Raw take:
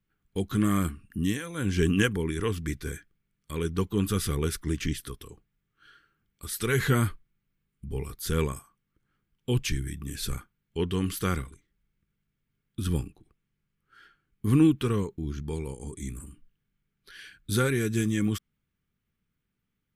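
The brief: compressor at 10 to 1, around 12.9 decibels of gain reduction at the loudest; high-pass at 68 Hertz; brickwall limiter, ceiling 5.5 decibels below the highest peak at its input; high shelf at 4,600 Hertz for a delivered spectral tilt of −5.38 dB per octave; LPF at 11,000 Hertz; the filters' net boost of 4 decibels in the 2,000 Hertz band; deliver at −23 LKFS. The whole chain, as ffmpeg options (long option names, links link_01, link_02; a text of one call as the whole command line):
ffmpeg -i in.wav -af "highpass=68,lowpass=11000,equalizer=frequency=2000:width_type=o:gain=6.5,highshelf=frequency=4600:gain=-7,acompressor=threshold=-29dB:ratio=10,volume=14dB,alimiter=limit=-10.5dB:level=0:latency=1" out.wav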